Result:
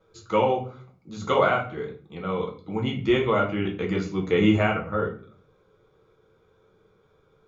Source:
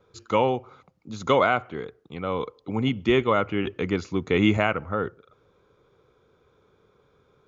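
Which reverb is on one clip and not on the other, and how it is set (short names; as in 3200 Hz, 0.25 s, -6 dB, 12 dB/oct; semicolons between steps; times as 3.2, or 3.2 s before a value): shoebox room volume 33 m³, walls mixed, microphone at 0.62 m; gain -4.5 dB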